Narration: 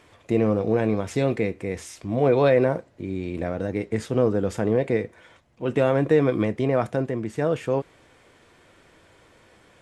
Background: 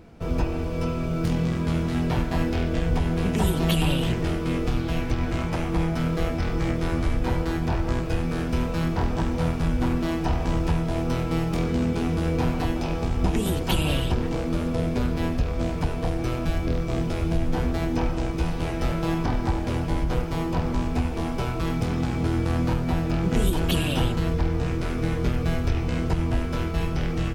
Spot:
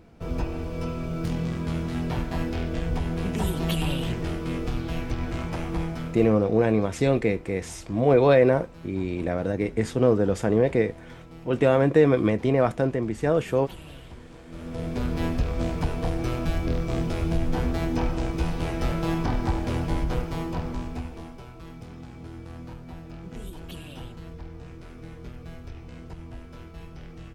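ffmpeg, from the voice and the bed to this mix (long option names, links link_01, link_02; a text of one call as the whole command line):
ffmpeg -i stem1.wav -i stem2.wav -filter_complex "[0:a]adelay=5850,volume=1dB[link_01];[1:a]volume=15dB,afade=type=out:start_time=5.75:duration=0.66:silence=0.158489,afade=type=in:start_time=14.47:duration=0.75:silence=0.112202,afade=type=out:start_time=19.93:duration=1.48:silence=0.16788[link_02];[link_01][link_02]amix=inputs=2:normalize=0" out.wav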